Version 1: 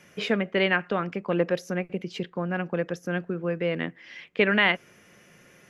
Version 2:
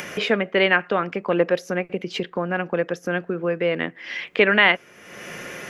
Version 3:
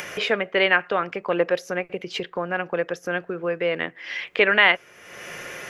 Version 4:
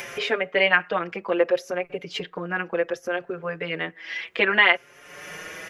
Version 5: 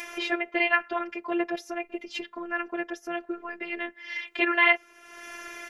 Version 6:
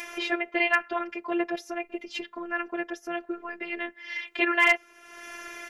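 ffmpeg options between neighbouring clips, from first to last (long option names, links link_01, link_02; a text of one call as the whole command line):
ffmpeg -i in.wav -af "bass=frequency=250:gain=-8,treble=frequency=4000:gain=-4,acompressor=mode=upward:threshold=-27dB:ratio=2.5,volume=6dB" out.wav
ffmpeg -i in.wav -af "equalizer=frequency=220:width_type=o:width=1.2:gain=-8.5" out.wav
ffmpeg -i in.wav -filter_complex "[0:a]asplit=2[link_01][link_02];[link_02]adelay=5.4,afreqshift=0.65[link_03];[link_01][link_03]amix=inputs=2:normalize=1,volume=1.5dB" out.wav
ffmpeg -i in.wav -af "afftfilt=real='hypot(re,im)*cos(PI*b)':imag='0':win_size=512:overlap=0.75" out.wav
ffmpeg -i in.wav -af "asoftclip=type=hard:threshold=-9.5dB" out.wav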